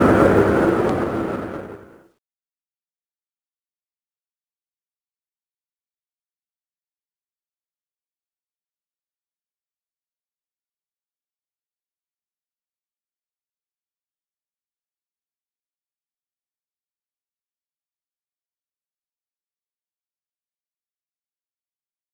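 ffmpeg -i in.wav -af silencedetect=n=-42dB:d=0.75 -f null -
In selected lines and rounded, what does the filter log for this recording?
silence_start: 2.01
silence_end: 22.14 | silence_duration: 20.13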